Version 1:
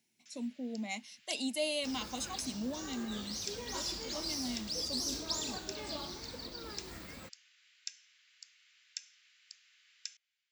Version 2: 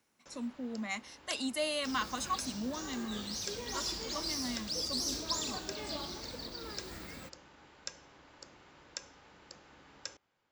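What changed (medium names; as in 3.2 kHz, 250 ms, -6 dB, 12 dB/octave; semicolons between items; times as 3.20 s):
speech: add high-order bell 1.4 kHz +15 dB 1 oct; first sound: remove inverse Chebyshev high-pass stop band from 800 Hz, stop band 50 dB; reverb: on, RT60 2.5 s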